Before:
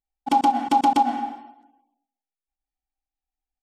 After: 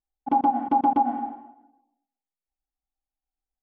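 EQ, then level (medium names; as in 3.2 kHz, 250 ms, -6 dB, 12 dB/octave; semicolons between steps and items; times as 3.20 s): low-pass 1.1 kHz 12 dB/octave; distance through air 88 m; -1.0 dB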